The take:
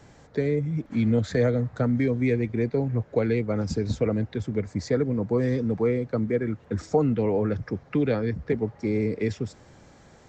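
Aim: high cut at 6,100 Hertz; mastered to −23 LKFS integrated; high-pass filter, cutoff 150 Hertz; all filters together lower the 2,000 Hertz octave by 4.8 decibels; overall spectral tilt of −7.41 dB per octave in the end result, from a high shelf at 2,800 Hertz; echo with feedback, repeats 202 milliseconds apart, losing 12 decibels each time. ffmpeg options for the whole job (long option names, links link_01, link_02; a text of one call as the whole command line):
ffmpeg -i in.wav -af "highpass=150,lowpass=6100,equalizer=frequency=2000:width_type=o:gain=-4.5,highshelf=frequency=2800:gain=-3,aecho=1:1:202|404|606:0.251|0.0628|0.0157,volume=4dB" out.wav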